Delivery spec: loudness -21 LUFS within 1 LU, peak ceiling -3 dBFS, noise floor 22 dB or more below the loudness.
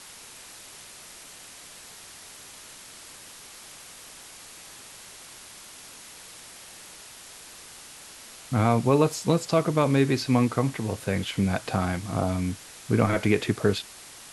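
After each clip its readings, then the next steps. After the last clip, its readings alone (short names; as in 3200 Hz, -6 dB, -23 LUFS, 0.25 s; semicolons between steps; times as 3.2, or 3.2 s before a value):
noise floor -46 dBFS; noise floor target -47 dBFS; loudness -25.0 LUFS; peak -7.5 dBFS; loudness target -21.0 LUFS
-> noise print and reduce 6 dB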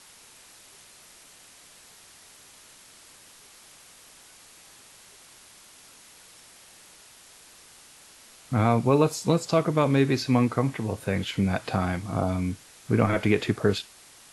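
noise floor -52 dBFS; loudness -25.0 LUFS; peak -7.5 dBFS; loudness target -21.0 LUFS
-> gain +4 dB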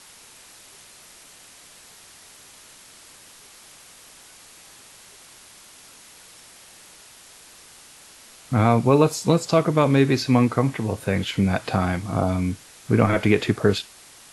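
loudness -21.0 LUFS; peak -3.5 dBFS; noise floor -48 dBFS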